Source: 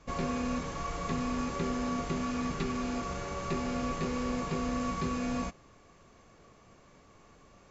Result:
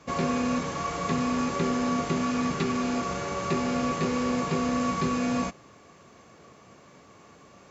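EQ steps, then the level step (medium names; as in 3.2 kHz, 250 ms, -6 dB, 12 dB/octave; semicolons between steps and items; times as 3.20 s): high-pass 110 Hz 12 dB/octave; +6.5 dB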